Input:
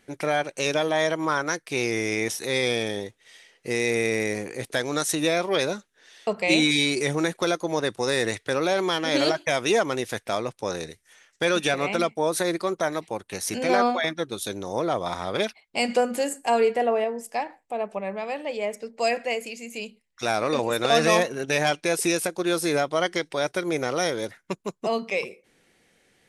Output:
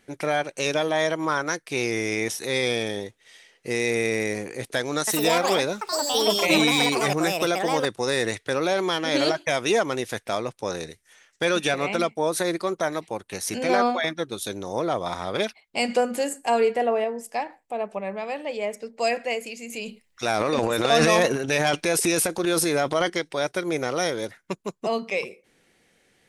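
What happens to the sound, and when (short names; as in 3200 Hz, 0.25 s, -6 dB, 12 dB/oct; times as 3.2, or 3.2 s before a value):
4.98–8.91 echoes that change speed 94 ms, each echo +6 st, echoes 2
19.57–23.1 transient shaper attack +1 dB, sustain +10 dB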